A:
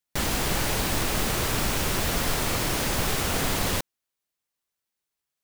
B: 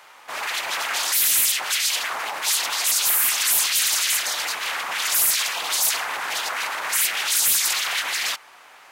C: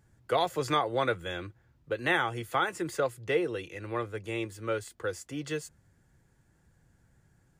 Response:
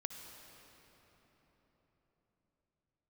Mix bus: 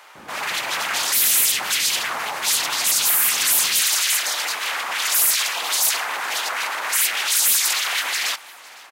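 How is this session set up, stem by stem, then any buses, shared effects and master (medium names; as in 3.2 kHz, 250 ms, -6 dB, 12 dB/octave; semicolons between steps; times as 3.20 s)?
-13.5 dB, 0.00 s, no send, no echo send, steep low-pass 1.7 kHz
+1.0 dB, 0.00 s, send -18.5 dB, echo send -21.5 dB, none
mute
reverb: on, RT60 4.5 s, pre-delay 54 ms
echo: feedback delay 508 ms, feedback 28%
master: high-pass 180 Hz 12 dB/octave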